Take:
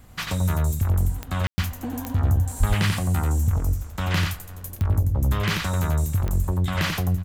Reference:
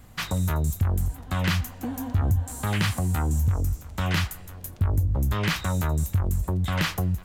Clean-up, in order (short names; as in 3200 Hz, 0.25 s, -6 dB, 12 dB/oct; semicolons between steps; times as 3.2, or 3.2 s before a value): de-click; de-plosive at 2.59; room tone fill 1.47–1.58; inverse comb 89 ms -4 dB